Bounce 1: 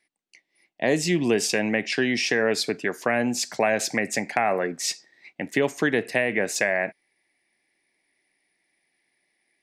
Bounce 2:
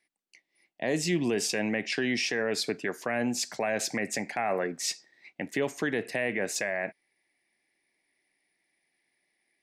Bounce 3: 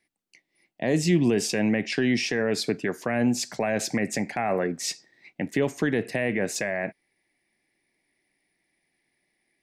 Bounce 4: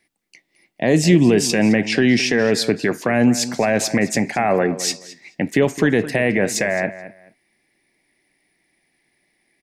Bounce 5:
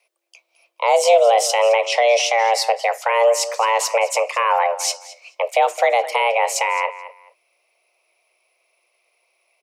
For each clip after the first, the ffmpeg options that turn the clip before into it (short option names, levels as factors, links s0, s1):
-af "alimiter=limit=0.188:level=0:latency=1:release=11,volume=0.631"
-af "lowshelf=f=280:g=11,volume=1.12"
-filter_complex "[0:a]asplit=2[s0][s1];[s1]adelay=214,lowpass=f=4800:p=1,volume=0.188,asplit=2[s2][s3];[s3]adelay=214,lowpass=f=4800:p=1,volume=0.22[s4];[s0][s2][s4]amix=inputs=3:normalize=0,volume=2.51"
-af "afreqshift=340"